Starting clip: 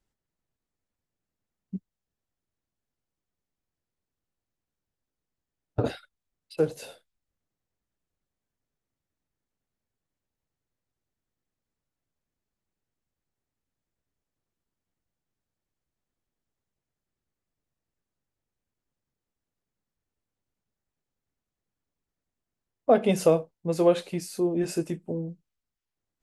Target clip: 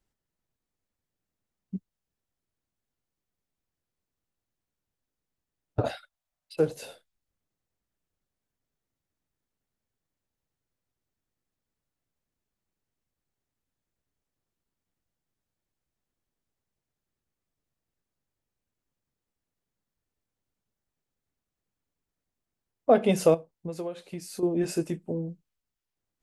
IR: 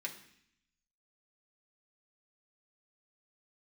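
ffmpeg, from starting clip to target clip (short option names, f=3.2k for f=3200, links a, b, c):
-filter_complex "[0:a]asettb=1/sr,asplit=3[a][b][c];[a]atrim=end=5.814[d];[b]atrim=start=5.81:end=6.55,asetpts=PTS-STARTPTS,afade=t=in:d=0.004:c=qsin,afade=t=out:st=0.736:d=0.004:c=qsin,lowshelf=f=510:t=q:w=3:g=-6.5[e];[c]atrim=start=6.546[f];[d][e]acrossfade=d=0.004:c1=hsin:c2=qsin[g];[g][f]acrossfade=d=0.004:c1=qsin:c2=hsin,asettb=1/sr,asplit=3[h][i][j];[h]atrim=end=23.344[k];[i]atrim=start=23.34:end=24.43,asetpts=PTS-STARTPTS,afade=t=in:d=0.004:c=qsin,afade=t=out:st=1.086:d=0.004:c=qsin,acompressor=threshold=-33dB:ratio=6[l];[j]atrim=start=24.426[m];[k][l]acrossfade=d=0.004:c1=hsin:c2=qsin[n];[n][m]acrossfade=d=0.004:c1=qsin:c2=hsin"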